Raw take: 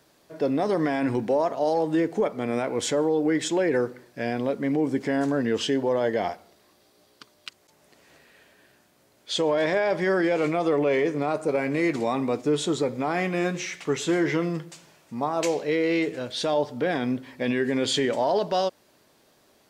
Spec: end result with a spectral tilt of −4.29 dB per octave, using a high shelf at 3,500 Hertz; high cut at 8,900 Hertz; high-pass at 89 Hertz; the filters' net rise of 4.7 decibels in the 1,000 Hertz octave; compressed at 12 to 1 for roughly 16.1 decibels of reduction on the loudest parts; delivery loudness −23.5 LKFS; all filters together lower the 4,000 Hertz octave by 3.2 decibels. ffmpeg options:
ffmpeg -i in.wav -af "highpass=89,lowpass=8900,equalizer=frequency=1000:width_type=o:gain=6.5,highshelf=frequency=3500:gain=6,equalizer=frequency=4000:width_type=o:gain=-8.5,acompressor=threshold=-34dB:ratio=12,volume=15dB" out.wav

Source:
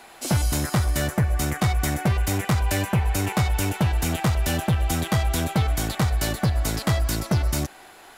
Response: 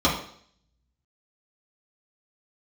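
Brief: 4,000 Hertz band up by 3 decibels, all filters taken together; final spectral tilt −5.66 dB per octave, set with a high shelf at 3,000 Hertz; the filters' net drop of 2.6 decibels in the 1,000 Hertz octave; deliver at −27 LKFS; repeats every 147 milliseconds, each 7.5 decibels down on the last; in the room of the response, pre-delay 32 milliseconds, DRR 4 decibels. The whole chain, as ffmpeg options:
-filter_complex "[0:a]equalizer=frequency=1000:width_type=o:gain=-3.5,highshelf=frequency=3000:gain=-4.5,equalizer=frequency=4000:width_type=o:gain=7.5,aecho=1:1:147|294|441|588|735:0.422|0.177|0.0744|0.0312|0.0131,asplit=2[link_01][link_02];[1:a]atrim=start_sample=2205,adelay=32[link_03];[link_02][link_03]afir=irnorm=-1:irlink=0,volume=-21dB[link_04];[link_01][link_04]amix=inputs=2:normalize=0,volume=-7.5dB"

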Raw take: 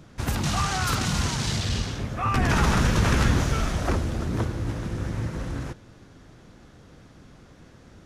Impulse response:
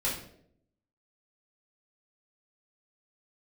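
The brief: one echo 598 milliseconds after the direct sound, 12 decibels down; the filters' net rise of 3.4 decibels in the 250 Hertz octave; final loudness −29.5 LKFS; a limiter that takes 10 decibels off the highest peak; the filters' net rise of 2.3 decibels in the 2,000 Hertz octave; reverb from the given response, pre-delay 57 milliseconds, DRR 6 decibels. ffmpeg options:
-filter_complex "[0:a]equalizer=frequency=250:width_type=o:gain=4.5,equalizer=frequency=2000:width_type=o:gain=3,alimiter=limit=-17dB:level=0:latency=1,aecho=1:1:598:0.251,asplit=2[link_01][link_02];[1:a]atrim=start_sample=2205,adelay=57[link_03];[link_02][link_03]afir=irnorm=-1:irlink=0,volume=-13dB[link_04];[link_01][link_04]amix=inputs=2:normalize=0,volume=-4dB"

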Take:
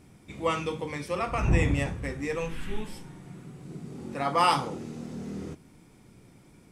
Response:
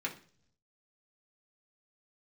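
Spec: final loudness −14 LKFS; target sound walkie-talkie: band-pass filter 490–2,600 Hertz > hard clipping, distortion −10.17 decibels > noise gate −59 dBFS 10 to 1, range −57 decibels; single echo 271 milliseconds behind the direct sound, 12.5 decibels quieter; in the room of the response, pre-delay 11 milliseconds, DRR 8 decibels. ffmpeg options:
-filter_complex "[0:a]aecho=1:1:271:0.237,asplit=2[link_01][link_02];[1:a]atrim=start_sample=2205,adelay=11[link_03];[link_02][link_03]afir=irnorm=-1:irlink=0,volume=-11.5dB[link_04];[link_01][link_04]amix=inputs=2:normalize=0,highpass=490,lowpass=2600,asoftclip=type=hard:threshold=-23dB,agate=range=-57dB:threshold=-59dB:ratio=10,volume=19dB"

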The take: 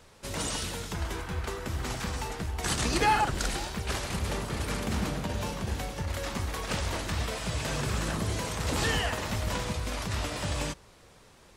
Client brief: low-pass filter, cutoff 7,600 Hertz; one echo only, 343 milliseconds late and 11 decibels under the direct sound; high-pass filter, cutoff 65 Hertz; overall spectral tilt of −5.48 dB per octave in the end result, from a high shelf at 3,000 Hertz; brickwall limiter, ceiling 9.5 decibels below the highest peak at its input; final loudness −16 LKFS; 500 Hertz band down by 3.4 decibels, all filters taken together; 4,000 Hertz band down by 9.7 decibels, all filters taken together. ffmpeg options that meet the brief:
ffmpeg -i in.wav -af "highpass=65,lowpass=7600,equalizer=frequency=500:width_type=o:gain=-4,highshelf=frequency=3000:gain=-5.5,equalizer=frequency=4000:width_type=o:gain=-8.5,alimiter=level_in=1.5dB:limit=-24dB:level=0:latency=1,volume=-1.5dB,aecho=1:1:343:0.282,volume=20dB" out.wav

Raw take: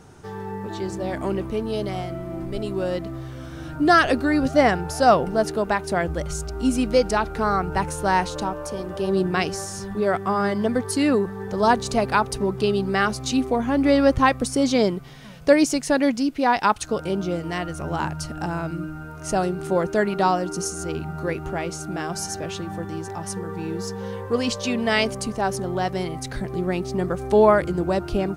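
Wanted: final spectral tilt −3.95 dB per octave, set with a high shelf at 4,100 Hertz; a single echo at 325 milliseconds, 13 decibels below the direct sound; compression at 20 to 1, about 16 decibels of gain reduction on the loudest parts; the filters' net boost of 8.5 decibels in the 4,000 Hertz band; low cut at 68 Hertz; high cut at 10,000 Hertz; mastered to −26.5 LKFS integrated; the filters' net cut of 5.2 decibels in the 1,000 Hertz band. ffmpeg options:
ffmpeg -i in.wav -af "highpass=68,lowpass=10000,equalizer=frequency=1000:width_type=o:gain=-8,equalizer=frequency=4000:width_type=o:gain=9,highshelf=frequency=4100:gain=4,acompressor=threshold=-28dB:ratio=20,aecho=1:1:325:0.224,volume=6dB" out.wav

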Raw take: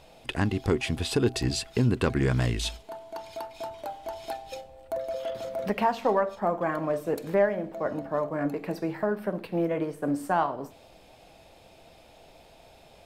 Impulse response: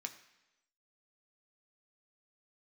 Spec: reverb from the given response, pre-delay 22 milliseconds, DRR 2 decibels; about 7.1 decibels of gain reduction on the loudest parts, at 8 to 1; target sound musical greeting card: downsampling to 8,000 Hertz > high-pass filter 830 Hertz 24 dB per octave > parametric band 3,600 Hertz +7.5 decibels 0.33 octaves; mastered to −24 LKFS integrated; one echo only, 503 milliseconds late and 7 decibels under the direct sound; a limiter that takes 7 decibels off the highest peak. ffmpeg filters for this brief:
-filter_complex "[0:a]acompressor=threshold=-26dB:ratio=8,alimiter=limit=-24dB:level=0:latency=1,aecho=1:1:503:0.447,asplit=2[link_01][link_02];[1:a]atrim=start_sample=2205,adelay=22[link_03];[link_02][link_03]afir=irnorm=-1:irlink=0,volume=0dB[link_04];[link_01][link_04]amix=inputs=2:normalize=0,aresample=8000,aresample=44100,highpass=frequency=830:width=0.5412,highpass=frequency=830:width=1.3066,equalizer=frequency=3600:width_type=o:width=0.33:gain=7.5,volume=15.5dB"

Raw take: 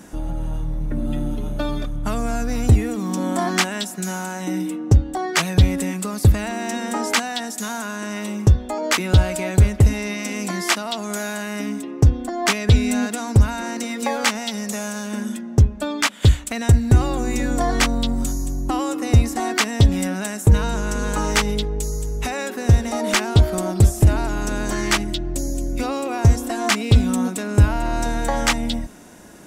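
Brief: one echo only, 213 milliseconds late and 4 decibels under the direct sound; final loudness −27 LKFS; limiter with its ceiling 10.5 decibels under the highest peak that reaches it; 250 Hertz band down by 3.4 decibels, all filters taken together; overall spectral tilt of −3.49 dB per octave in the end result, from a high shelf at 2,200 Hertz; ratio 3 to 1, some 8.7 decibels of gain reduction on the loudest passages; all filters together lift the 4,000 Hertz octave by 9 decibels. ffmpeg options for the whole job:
ffmpeg -i in.wav -af "equalizer=frequency=250:width_type=o:gain=-4.5,highshelf=frequency=2200:gain=4,equalizer=frequency=4000:width_type=o:gain=7.5,acompressor=threshold=-20dB:ratio=3,alimiter=limit=-14.5dB:level=0:latency=1,aecho=1:1:213:0.631,volume=-2.5dB" out.wav

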